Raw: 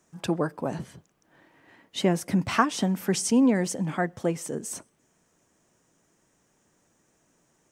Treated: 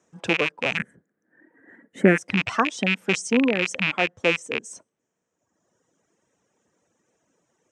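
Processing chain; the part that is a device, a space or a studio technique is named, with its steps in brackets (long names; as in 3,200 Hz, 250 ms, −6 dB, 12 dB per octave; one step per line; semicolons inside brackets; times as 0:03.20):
car door speaker with a rattle (loose part that buzzes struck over −35 dBFS, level −9 dBFS; loudspeaker in its box 95–7,700 Hz, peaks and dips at 150 Hz −3 dB, 490 Hz +6 dB, 4,600 Hz −6 dB)
reverb reduction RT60 1.3 s
0:00.77–0:02.18: drawn EQ curve 120 Hz 0 dB, 230 Hz +11 dB, 1,100 Hz −5 dB, 1,700 Hz +12 dB, 2,700 Hz −12 dB, 4,900 Hz −19 dB, 10,000 Hz +5 dB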